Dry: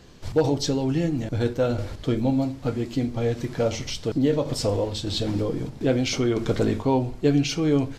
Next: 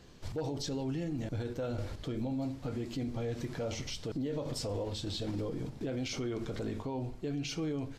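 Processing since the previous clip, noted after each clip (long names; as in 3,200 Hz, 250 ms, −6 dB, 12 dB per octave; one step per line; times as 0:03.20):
speech leveller 2 s
brickwall limiter −21 dBFS, peak gain reduction 11.5 dB
level −7.5 dB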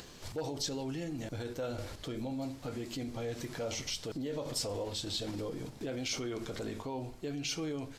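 high-shelf EQ 6,500 Hz +8 dB
upward compression, threshold −42 dBFS
low-shelf EQ 310 Hz −7.5 dB
level +1.5 dB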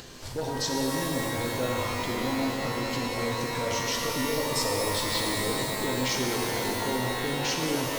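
reverb with rising layers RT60 3.4 s, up +12 semitones, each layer −2 dB, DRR −0.5 dB
level +4.5 dB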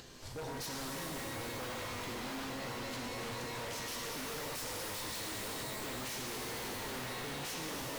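wave folding −28 dBFS
level −8 dB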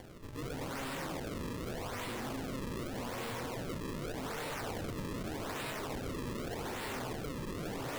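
sample-and-hold swept by an LFO 34×, swing 160% 0.84 Hz
level +1.5 dB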